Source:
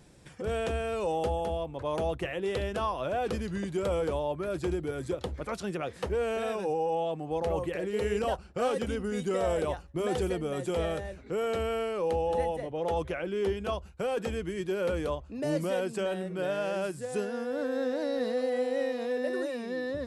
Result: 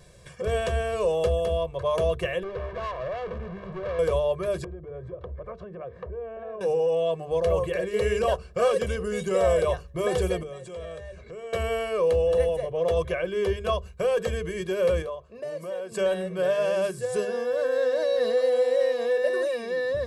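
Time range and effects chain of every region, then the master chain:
2.43–3.99 s: one-bit delta coder 64 kbps, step -31 dBFS + low-pass 1.2 kHz + valve stage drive 35 dB, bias 0.6
4.64–6.61 s: low-pass 1.1 kHz + compression, threshold -39 dBFS
10.43–11.53 s: steep low-pass 9.6 kHz 48 dB/octave + compression 3:1, threshold -45 dBFS
15.02–15.92 s: high-pass 430 Hz 6 dB/octave + treble shelf 2 kHz -9 dB + compression 3:1, threshold -38 dBFS
whole clip: hum notches 50/100/150/200/250/300/350/400/450 Hz; comb 1.8 ms, depth 93%; trim +2.5 dB

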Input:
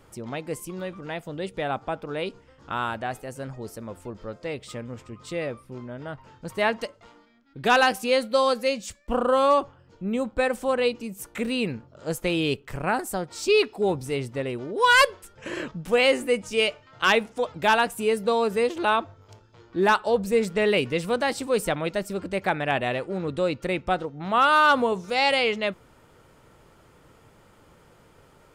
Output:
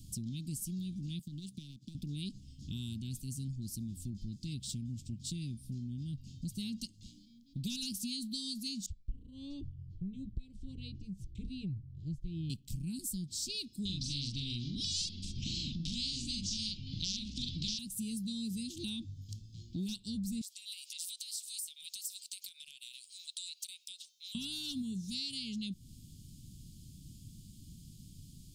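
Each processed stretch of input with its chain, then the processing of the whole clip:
1.19–1.95 s: high-pass 120 Hz 24 dB/octave + compression 16:1, threshold -35 dBFS + power-law waveshaper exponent 1.4
8.86–12.50 s: low-pass 1.5 kHz + bass shelf 260 Hz +7 dB + static phaser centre 560 Hz, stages 4
13.85–17.79 s: low-pass 4.5 kHz 24 dB/octave + doubling 42 ms -2.5 dB + spectrum-flattening compressor 4:1
20.41–24.35 s: inverse Chebyshev high-pass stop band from 280 Hz, stop band 70 dB + treble shelf 4.9 kHz +8 dB + compression 16:1, threshold -37 dBFS
whole clip: inverse Chebyshev band-stop 480–1900 Hz, stop band 50 dB; compression 4:1, threshold -45 dBFS; trim +7 dB

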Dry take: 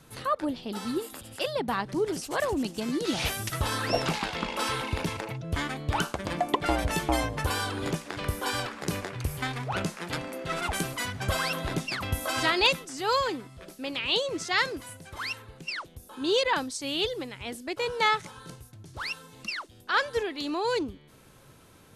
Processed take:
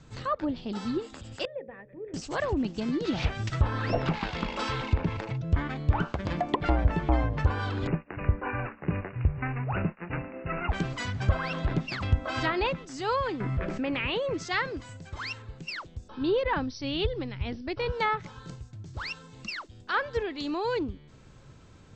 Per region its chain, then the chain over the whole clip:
1.45–2.14 s: cascade formant filter e + hum notches 60/120/180/240/300/360/420/480/540/600 Hz
7.87–10.70 s: expander -35 dBFS + brick-wall FIR low-pass 2.9 kHz
13.40–14.34 s: resonant high shelf 2.9 kHz -9.5 dB, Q 1.5 + level flattener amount 70%
16.08–17.92 s: brick-wall FIR low-pass 6 kHz + bass shelf 130 Hz +11.5 dB
whole clip: Chebyshev low-pass 8 kHz, order 8; bass shelf 180 Hz +12 dB; low-pass that closes with the level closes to 1.8 kHz, closed at -19.5 dBFS; trim -2 dB

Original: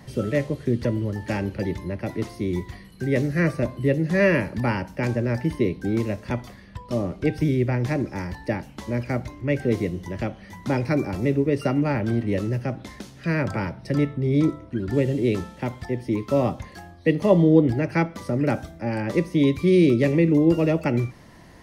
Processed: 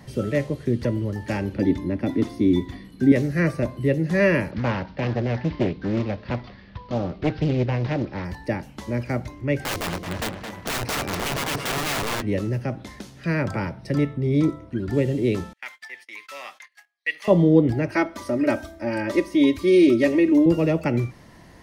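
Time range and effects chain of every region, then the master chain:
1.53–3.12 s: treble shelf 5.4 kHz -4.5 dB + small resonant body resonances 270/3500 Hz, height 15 dB, ringing for 60 ms
4.51–8.25 s: CVSD coder 32 kbps + steep low-pass 4.7 kHz + loudspeaker Doppler distortion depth 0.57 ms
9.64–12.22 s: integer overflow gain 21.5 dB + tape echo 219 ms, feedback 59%, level -5 dB, low-pass 5.2 kHz
15.53–17.28 s: gate -39 dBFS, range -26 dB + resonant high-pass 1.9 kHz, resonance Q 2
17.90–20.46 s: bass shelf 250 Hz -6.5 dB + comb 3.2 ms, depth 95%
whole clip: none

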